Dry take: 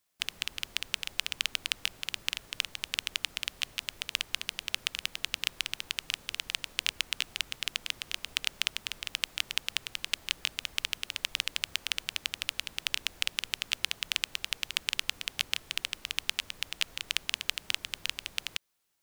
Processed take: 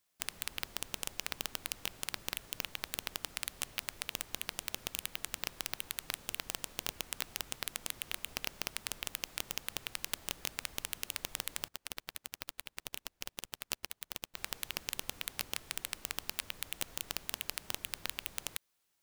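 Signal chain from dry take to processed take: wrapped overs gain 15.5 dB; 11.68–14.37 upward expander 2.5:1, over -50 dBFS; gain -1 dB

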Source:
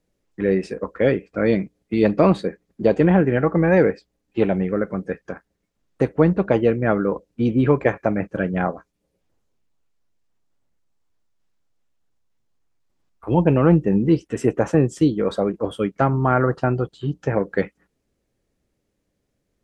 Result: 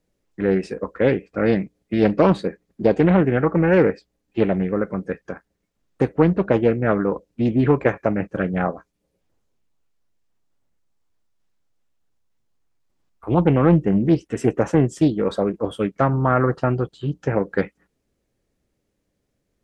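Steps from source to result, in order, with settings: Doppler distortion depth 0.34 ms

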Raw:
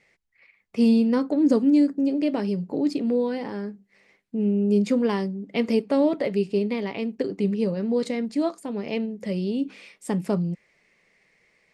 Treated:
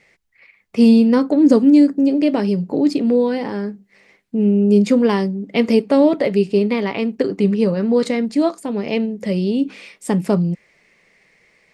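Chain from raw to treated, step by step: 6.58–8.17 dynamic EQ 1300 Hz, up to +5 dB, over -45 dBFS, Q 1.5; gain +7.5 dB

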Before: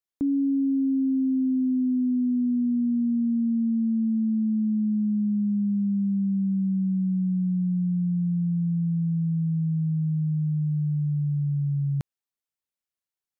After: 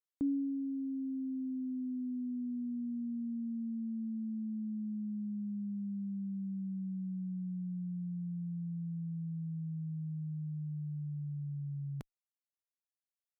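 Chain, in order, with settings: reverb removal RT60 1.6 s; added harmonics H 2 -44 dB, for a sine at -19.5 dBFS; gain -7.5 dB

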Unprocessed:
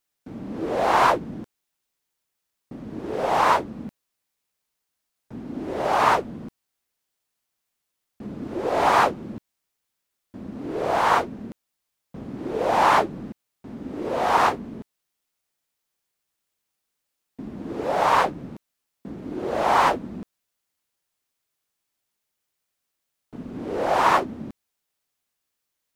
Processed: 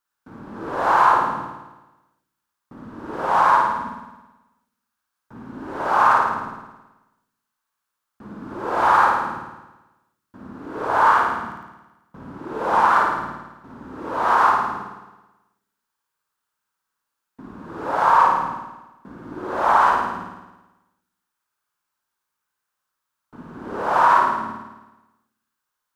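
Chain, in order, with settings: band shelf 1200 Hz +12 dB 1.1 oct; limiter -3 dBFS, peak gain reduction 8 dB; on a send: flutter echo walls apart 9.3 m, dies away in 1.1 s; on the sum: gain -5.5 dB

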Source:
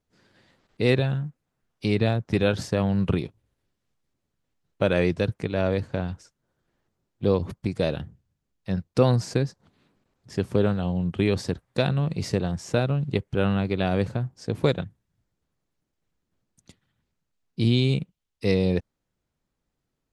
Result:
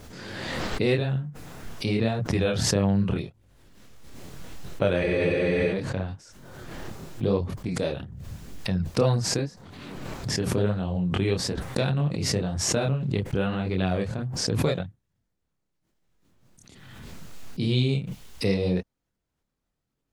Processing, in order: chorus voices 2, 0.87 Hz, delay 26 ms, depth 4.7 ms; spectral freeze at 5.04, 0.69 s; backwards sustainer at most 28 dB/s

